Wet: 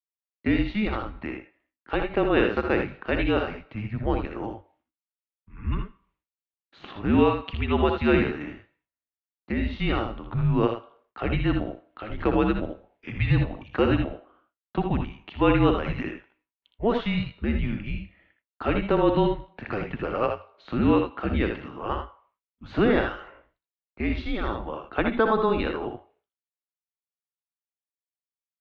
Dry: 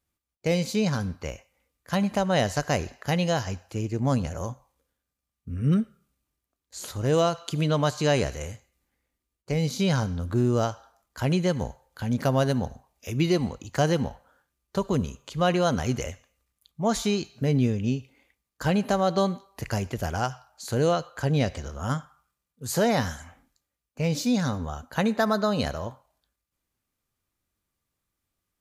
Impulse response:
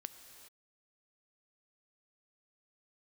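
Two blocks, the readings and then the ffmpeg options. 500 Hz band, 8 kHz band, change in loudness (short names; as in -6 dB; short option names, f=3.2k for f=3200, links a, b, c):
+1.0 dB, under -30 dB, +0.5 dB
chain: -filter_complex "[0:a]agate=range=-33dB:threshold=-59dB:ratio=3:detection=peak,asplit=2[a][b];[b]aecho=0:1:62|79:0.398|0.422[c];[a][c]amix=inputs=2:normalize=0,highpass=f=180:t=q:w=0.5412,highpass=f=180:t=q:w=1.307,lowpass=f=3.3k:t=q:w=0.5176,lowpass=f=3.3k:t=q:w=0.7071,lowpass=f=3.3k:t=q:w=1.932,afreqshift=-220,highpass=f=69:p=1,volume=3dB"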